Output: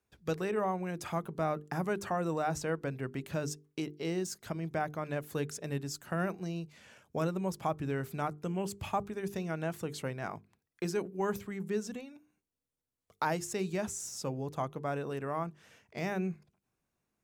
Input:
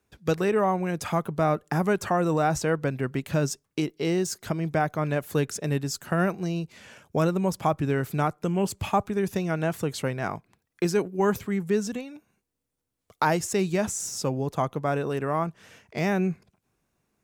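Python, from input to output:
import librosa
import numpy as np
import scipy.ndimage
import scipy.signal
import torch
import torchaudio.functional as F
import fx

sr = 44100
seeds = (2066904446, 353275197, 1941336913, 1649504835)

y = fx.hum_notches(x, sr, base_hz=50, count=9)
y = F.gain(torch.from_numpy(y), -8.5).numpy()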